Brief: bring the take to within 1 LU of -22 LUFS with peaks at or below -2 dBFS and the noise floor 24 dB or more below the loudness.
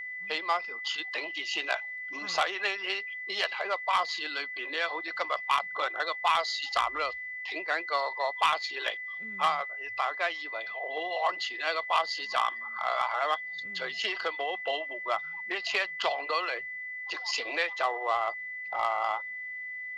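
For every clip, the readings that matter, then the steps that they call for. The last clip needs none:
steady tone 2000 Hz; tone level -36 dBFS; loudness -30.5 LUFS; peak -13.5 dBFS; loudness target -22.0 LUFS
-> notch 2000 Hz, Q 30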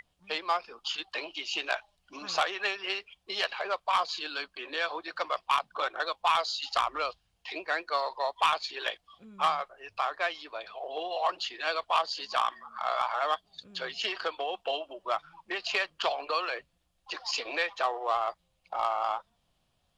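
steady tone none; loudness -31.5 LUFS; peak -14.5 dBFS; loudness target -22.0 LUFS
-> gain +9.5 dB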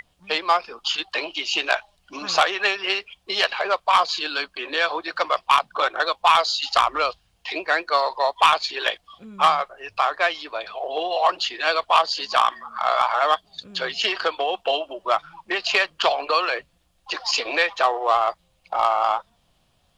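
loudness -22.0 LUFS; peak -5.0 dBFS; noise floor -65 dBFS

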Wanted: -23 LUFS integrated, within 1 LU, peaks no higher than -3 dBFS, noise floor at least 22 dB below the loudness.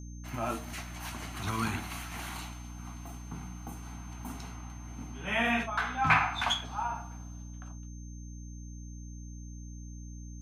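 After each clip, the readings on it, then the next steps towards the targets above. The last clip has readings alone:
hum 60 Hz; harmonics up to 300 Hz; hum level -41 dBFS; steady tone 6300 Hz; tone level -55 dBFS; loudness -33.5 LUFS; peak -11.0 dBFS; loudness target -23.0 LUFS
-> notches 60/120/180/240/300 Hz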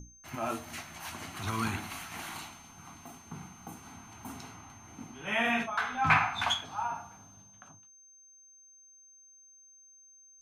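hum none; steady tone 6300 Hz; tone level -55 dBFS
-> notch 6300 Hz, Q 30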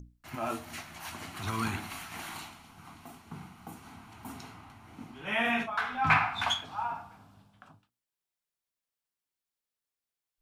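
steady tone none; loudness -32.0 LUFS; peak -11.0 dBFS; loudness target -23.0 LUFS
-> gain +9 dB; limiter -3 dBFS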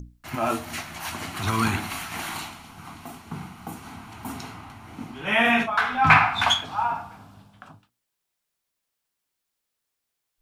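loudness -23.0 LUFS; peak -3.0 dBFS; noise floor -81 dBFS

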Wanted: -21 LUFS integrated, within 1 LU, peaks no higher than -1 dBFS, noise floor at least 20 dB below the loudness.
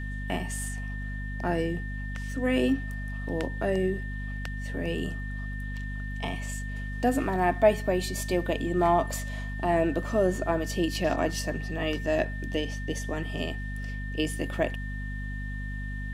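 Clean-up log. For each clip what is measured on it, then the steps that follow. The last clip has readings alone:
hum 50 Hz; harmonics up to 250 Hz; hum level -32 dBFS; steady tone 1800 Hz; tone level -40 dBFS; loudness -29.5 LUFS; peak -8.5 dBFS; loudness target -21.0 LUFS
-> de-hum 50 Hz, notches 5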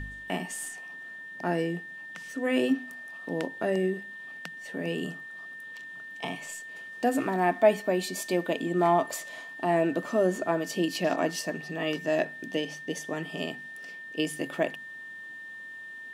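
hum none; steady tone 1800 Hz; tone level -40 dBFS
-> notch 1800 Hz, Q 30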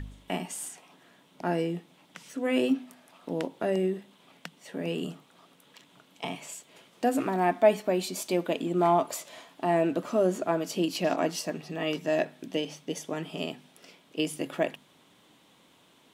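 steady tone none; loudness -30.0 LUFS; peak -9.0 dBFS; loudness target -21.0 LUFS
-> gain +9 dB; limiter -1 dBFS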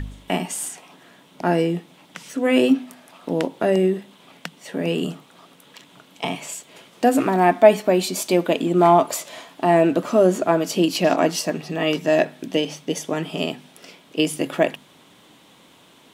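loudness -21.0 LUFS; peak -1.0 dBFS; noise floor -52 dBFS

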